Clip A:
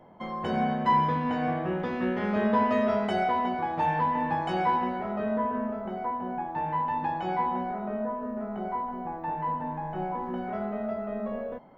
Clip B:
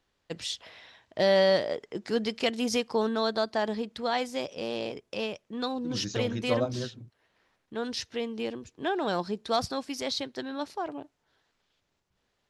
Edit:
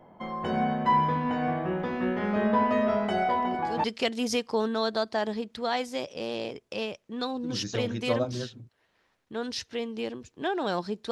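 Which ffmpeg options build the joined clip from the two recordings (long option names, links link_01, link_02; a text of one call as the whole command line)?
ffmpeg -i cue0.wav -i cue1.wav -filter_complex "[1:a]asplit=2[link_01][link_02];[0:a]apad=whole_dur=11.11,atrim=end=11.11,atrim=end=3.842[link_03];[link_02]atrim=start=2.248:end=9.52[link_04];[link_01]atrim=start=1.7:end=2.25,asetpts=PTS-STARTPTS,volume=-8dB,afade=type=in:duration=0.004:curve=hsin,afade=type=out:start_time=0.546:duration=0.004:curve=hsin,adelay=145089S[link_05];[link_03][link_04]acrossfade=duration=0.004:curve1=hsin:curve2=hsin[link_06];[link_06][link_05]amix=inputs=2:normalize=0" out.wav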